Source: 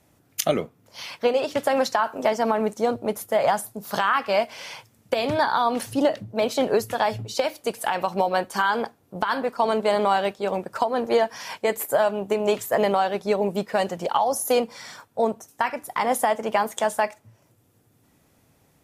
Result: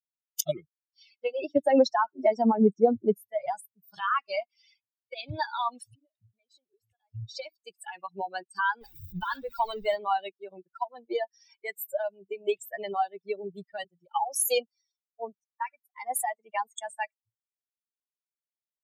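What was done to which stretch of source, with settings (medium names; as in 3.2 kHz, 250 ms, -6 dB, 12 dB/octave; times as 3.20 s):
1.38–3.32 s: peaking EQ 250 Hz +9.5 dB 2.6 oct
5.94–7.15 s: compression 4:1, threshold -35 dBFS
8.81–9.96 s: jump at every zero crossing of -25 dBFS
13.84–16.24 s: three bands expanded up and down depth 70%
whole clip: expander on every frequency bin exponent 3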